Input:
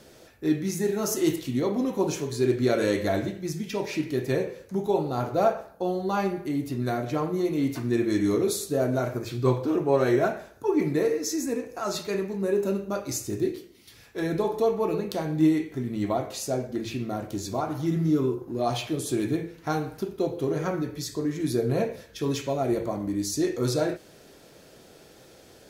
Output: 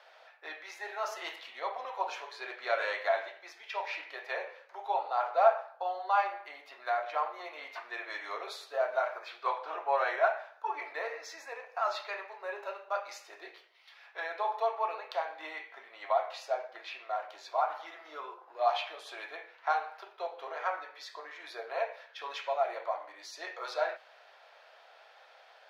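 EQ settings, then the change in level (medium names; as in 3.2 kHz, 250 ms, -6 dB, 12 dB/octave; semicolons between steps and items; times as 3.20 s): steep high-pass 680 Hz 36 dB/octave; distance through air 340 m; +4.0 dB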